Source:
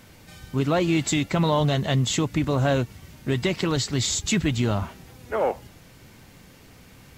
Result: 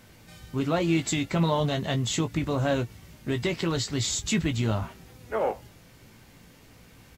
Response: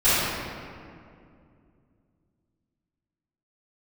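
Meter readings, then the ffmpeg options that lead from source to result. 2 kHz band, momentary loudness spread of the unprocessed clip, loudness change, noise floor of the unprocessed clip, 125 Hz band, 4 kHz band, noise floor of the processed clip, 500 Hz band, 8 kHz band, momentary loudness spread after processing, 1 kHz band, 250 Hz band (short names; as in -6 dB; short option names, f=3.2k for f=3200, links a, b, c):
-3.0 dB, 9 LU, -3.5 dB, -50 dBFS, -4.0 dB, -3.5 dB, -54 dBFS, -3.5 dB, -3.5 dB, 9 LU, -3.5 dB, -3.0 dB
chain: -filter_complex "[0:a]asplit=2[a][b];[b]adelay=18,volume=-8dB[c];[a][c]amix=inputs=2:normalize=0,volume=-4dB"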